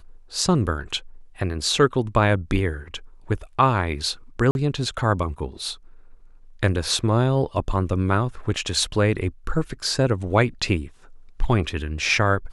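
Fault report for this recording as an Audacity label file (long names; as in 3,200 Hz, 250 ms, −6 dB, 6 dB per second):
4.510000	4.550000	drop-out 41 ms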